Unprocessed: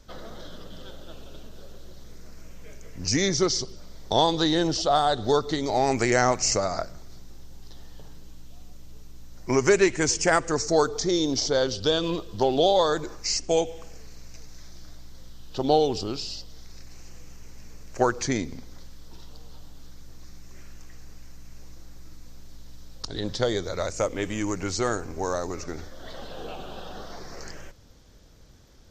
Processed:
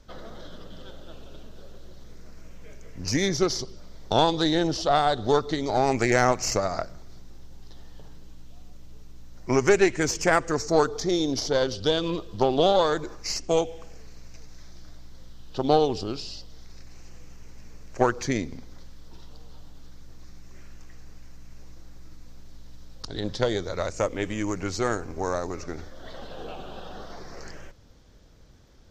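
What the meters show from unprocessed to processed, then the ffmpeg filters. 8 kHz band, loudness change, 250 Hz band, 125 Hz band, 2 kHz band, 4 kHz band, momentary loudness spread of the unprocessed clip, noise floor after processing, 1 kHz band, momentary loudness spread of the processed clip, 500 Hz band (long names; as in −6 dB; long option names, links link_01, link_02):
−4.5 dB, −0.5 dB, 0.0 dB, +0.5 dB, 0.0 dB, −2.5 dB, 20 LU, −45 dBFS, 0.0 dB, 21 LU, 0.0 dB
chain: -af "aeval=exprs='0.473*(cos(1*acos(clip(val(0)/0.473,-1,1)))-cos(1*PI/2))+0.0531*(cos(4*acos(clip(val(0)/0.473,-1,1)))-cos(4*PI/2))+0.00944*(cos(6*acos(clip(val(0)/0.473,-1,1)))-cos(6*PI/2))+0.00473*(cos(7*acos(clip(val(0)/0.473,-1,1)))-cos(7*PI/2))+0.00299*(cos(8*acos(clip(val(0)/0.473,-1,1)))-cos(8*PI/2))':channel_layout=same,highshelf=frequency=5800:gain=-7.5"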